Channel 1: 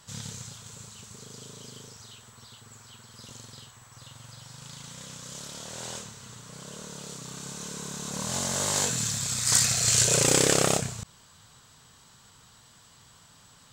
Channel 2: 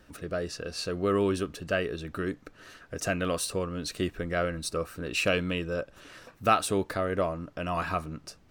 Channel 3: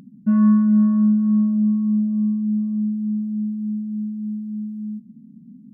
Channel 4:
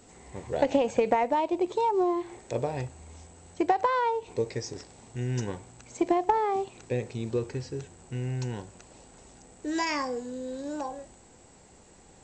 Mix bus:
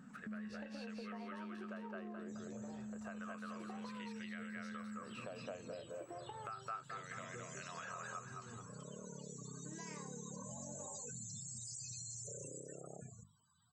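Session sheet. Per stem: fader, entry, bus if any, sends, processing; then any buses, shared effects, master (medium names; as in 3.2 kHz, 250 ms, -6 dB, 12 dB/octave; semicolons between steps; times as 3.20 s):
12.35 s -3.5 dB -> 12.64 s -15.5 dB, 2.20 s, bus A, no send, no echo send, loudest bins only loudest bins 32; peak limiter -21.5 dBFS, peak gain reduction 9.5 dB
-0.5 dB, 0.00 s, bus B, no send, echo send -5 dB, de-esser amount 70%; treble shelf 11 kHz +4.5 dB; wah-wah 0.31 Hz 670–2200 Hz, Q 2.8
-18.0 dB, 0.00 s, bus A, no send, echo send -13 dB, bass shelf 380 Hz +10 dB; gain riding within 4 dB
-9.5 dB, 0.00 s, bus B, no send, no echo send, chord resonator D#2 major, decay 0.21 s
bus A: 0.0 dB, high-pass 92 Hz; peak limiter -34.5 dBFS, peak gain reduction 11.5 dB
bus B: 0.0 dB, compression 2.5:1, threshold -44 dBFS, peak gain reduction 14.5 dB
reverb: none
echo: feedback delay 213 ms, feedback 37%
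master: hum notches 50/100/150/200/250/300/350 Hz; compression 3:1, threshold -46 dBFS, peak gain reduction 14 dB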